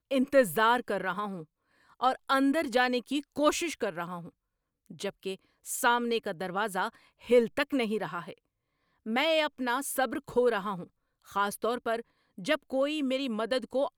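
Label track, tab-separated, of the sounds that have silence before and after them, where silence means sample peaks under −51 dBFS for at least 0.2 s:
1.920000	4.290000	sound
4.860000	5.360000	sound
5.640000	8.380000	sound
9.060000	10.870000	sound
11.260000	12.020000	sound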